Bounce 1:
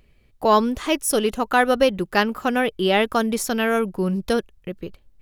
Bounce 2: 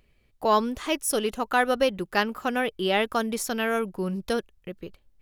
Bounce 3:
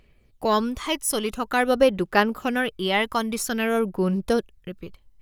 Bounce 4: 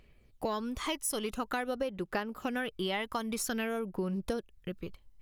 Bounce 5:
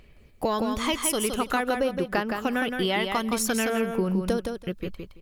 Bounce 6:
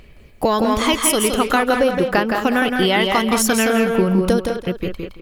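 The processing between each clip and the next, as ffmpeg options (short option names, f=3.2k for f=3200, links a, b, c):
-af "lowshelf=f=400:g=-3.5,volume=-4dB"
-af "aphaser=in_gain=1:out_gain=1:delay=1:decay=0.42:speed=0.49:type=sinusoidal,volume=1.5dB"
-af "acompressor=threshold=-27dB:ratio=10,volume=-3dB"
-af "aecho=1:1:167|334|501:0.531|0.0849|0.0136,volume=7.5dB"
-filter_complex "[0:a]asplit=2[a][b];[b]adelay=200,highpass=300,lowpass=3.4k,asoftclip=type=hard:threshold=-20.5dB,volume=-6dB[c];[a][c]amix=inputs=2:normalize=0,volume=8.5dB"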